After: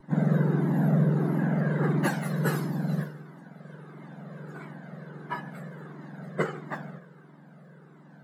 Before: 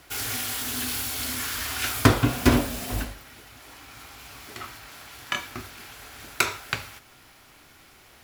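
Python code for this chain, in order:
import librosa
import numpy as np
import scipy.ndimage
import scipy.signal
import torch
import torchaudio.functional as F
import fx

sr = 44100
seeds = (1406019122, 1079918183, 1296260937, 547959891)

p1 = fx.octave_mirror(x, sr, pivot_hz=1700.0)
p2 = fx.tilt_eq(p1, sr, slope=-3.0)
p3 = fx.vibrato(p2, sr, rate_hz=1.4, depth_cents=16.0)
p4 = fx.graphic_eq_31(p3, sr, hz=(250, 1600, 2500), db=(-11, 11, -6))
p5 = p4 + fx.echo_feedback(p4, sr, ms=152, feedback_pct=54, wet_db=-21.5, dry=0)
p6 = fx.comb_cascade(p5, sr, direction='falling', hz=1.5)
y = p6 * 10.0 ** (-1.5 / 20.0)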